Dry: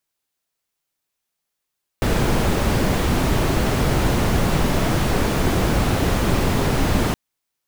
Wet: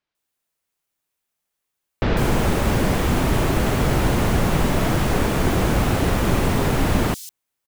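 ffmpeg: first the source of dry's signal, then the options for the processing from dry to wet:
-f lavfi -i "anoisesrc=color=brown:amplitude=0.589:duration=5.12:sample_rate=44100:seed=1"
-filter_complex "[0:a]acrossover=split=4700[link_01][link_02];[link_02]adelay=150[link_03];[link_01][link_03]amix=inputs=2:normalize=0"

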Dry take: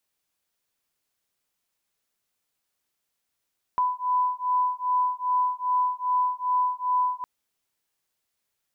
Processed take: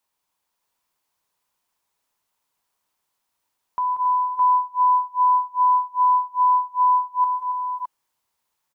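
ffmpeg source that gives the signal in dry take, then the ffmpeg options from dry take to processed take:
-f lavfi -i "aevalsrc='0.0562*(sin(2*PI*997*t)+sin(2*PI*999.5*t))':duration=3.46:sample_rate=44100"
-filter_complex "[0:a]equalizer=frequency=960:width_type=o:width=0.52:gain=12,alimiter=limit=-19dB:level=0:latency=1,asplit=2[link_01][link_02];[link_02]aecho=0:1:185|276|613:0.282|0.316|0.631[link_03];[link_01][link_03]amix=inputs=2:normalize=0"

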